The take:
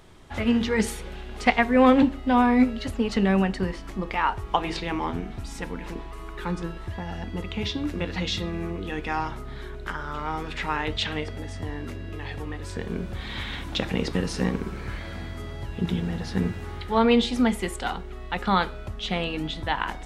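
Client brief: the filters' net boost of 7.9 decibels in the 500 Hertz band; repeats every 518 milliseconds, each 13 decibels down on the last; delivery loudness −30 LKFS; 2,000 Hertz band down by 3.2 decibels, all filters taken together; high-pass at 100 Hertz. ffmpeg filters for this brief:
ffmpeg -i in.wav -af "highpass=100,equalizer=frequency=500:width_type=o:gain=9,equalizer=frequency=2000:width_type=o:gain=-4.5,aecho=1:1:518|1036|1554:0.224|0.0493|0.0108,volume=-7dB" out.wav

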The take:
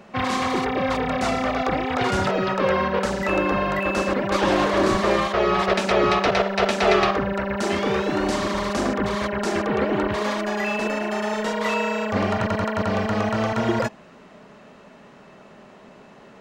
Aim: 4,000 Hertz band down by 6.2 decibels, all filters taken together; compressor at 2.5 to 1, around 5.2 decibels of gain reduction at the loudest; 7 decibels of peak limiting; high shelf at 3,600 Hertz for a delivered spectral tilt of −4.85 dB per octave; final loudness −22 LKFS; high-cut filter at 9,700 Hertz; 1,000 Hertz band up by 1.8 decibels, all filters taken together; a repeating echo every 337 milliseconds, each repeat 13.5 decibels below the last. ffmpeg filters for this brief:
ffmpeg -i in.wav -af "lowpass=9700,equalizer=frequency=1000:width_type=o:gain=3,highshelf=frequency=3600:gain=-5.5,equalizer=frequency=4000:width_type=o:gain=-5,acompressor=threshold=-22dB:ratio=2.5,alimiter=limit=-18dB:level=0:latency=1,aecho=1:1:337|674:0.211|0.0444,volume=5dB" out.wav

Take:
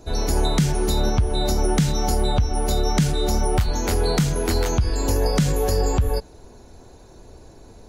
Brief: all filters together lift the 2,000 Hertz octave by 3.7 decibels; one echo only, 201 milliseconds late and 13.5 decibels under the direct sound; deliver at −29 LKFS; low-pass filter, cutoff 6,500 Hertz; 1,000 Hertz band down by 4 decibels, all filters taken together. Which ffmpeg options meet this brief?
ffmpeg -i in.wav -af "lowpass=6500,equalizer=frequency=1000:width_type=o:gain=-7,equalizer=frequency=2000:width_type=o:gain=7,aecho=1:1:201:0.211,volume=-6.5dB" out.wav

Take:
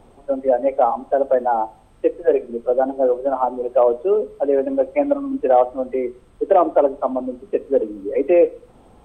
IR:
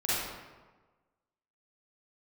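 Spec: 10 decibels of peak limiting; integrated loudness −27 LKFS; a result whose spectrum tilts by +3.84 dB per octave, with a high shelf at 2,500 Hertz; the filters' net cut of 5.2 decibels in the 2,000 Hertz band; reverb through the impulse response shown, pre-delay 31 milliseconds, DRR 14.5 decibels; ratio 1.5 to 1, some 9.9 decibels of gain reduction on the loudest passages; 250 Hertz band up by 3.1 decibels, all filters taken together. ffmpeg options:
-filter_complex "[0:a]equalizer=frequency=250:width_type=o:gain=4,equalizer=frequency=2000:width_type=o:gain=-5,highshelf=frequency=2500:gain=-5,acompressor=threshold=-38dB:ratio=1.5,alimiter=limit=-23dB:level=0:latency=1,asplit=2[link_01][link_02];[1:a]atrim=start_sample=2205,adelay=31[link_03];[link_02][link_03]afir=irnorm=-1:irlink=0,volume=-24dB[link_04];[link_01][link_04]amix=inputs=2:normalize=0,volume=5.5dB"

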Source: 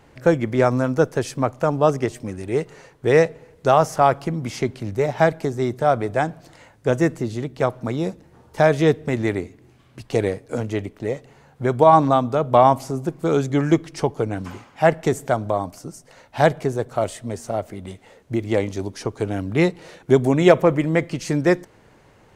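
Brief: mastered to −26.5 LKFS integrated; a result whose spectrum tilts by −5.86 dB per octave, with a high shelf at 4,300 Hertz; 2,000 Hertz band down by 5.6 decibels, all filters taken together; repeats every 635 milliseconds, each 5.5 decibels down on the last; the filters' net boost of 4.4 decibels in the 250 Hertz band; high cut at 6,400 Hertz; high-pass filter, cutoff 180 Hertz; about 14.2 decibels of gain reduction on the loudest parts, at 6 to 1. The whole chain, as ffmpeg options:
ffmpeg -i in.wav -af "highpass=180,lowpass=6400,equalizer=frequency=250:width_type=o:gain=7.5,equalizer=frequency=2000:width_type=o:gain=-6.5,highshelf=frequency=4300:gain=-4,acompressor=threshold=-22dB:ratio=6,aecho=1:1:635|1270|1905|2540|3175|3810|4445:0.531|0.281|0.149|0.079|0.0419|0.0222|0.0118,volume=0.5dB" out.wav

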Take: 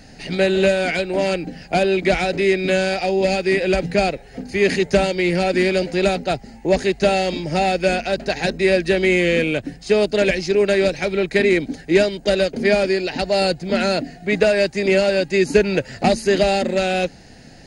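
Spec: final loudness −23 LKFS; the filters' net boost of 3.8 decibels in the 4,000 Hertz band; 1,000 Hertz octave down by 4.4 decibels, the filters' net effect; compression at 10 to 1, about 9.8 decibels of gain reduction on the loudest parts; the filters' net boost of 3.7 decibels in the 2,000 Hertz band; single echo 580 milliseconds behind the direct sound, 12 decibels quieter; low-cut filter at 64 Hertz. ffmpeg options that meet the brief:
ffmpeg -i in.wav -af "highpass=64,equalizer=frequency=1000:width_type=o:gain=-8.5,equalizer=frequency=2000:width_type=o:gain=5.5,equalizer=frequency=4000:width_type=o:gain=3.5,acompressor=threshold=-21dB:ratio=10,aecho=1:1:580:0.251,volume=2dB" out.wav

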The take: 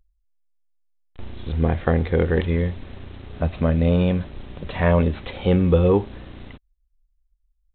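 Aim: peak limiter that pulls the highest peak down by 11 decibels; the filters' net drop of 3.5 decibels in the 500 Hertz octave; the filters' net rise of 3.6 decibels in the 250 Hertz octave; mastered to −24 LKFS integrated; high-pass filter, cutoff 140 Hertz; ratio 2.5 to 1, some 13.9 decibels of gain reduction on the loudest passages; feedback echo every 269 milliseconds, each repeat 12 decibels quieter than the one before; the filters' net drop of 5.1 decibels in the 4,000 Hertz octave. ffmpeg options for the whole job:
ffmpeg -i in.wav -af "highpass=140,equalizer=frequency=250:width_type=o:gain=8,equalizer=frequency=500:width_type=o:gain=-6.5,equalizer=frequency=4000:width_type=o:gain=-7,acompressor=threshold=-35dB:ratio=2.5,alimiter=level_in=1.5dB:limit=-24dB:level=0:latency=1,volume=-1.5dB,aecho=1:1:269|538|807:0.251|0.0628|0.0157,volume=13.5dB" out.wav

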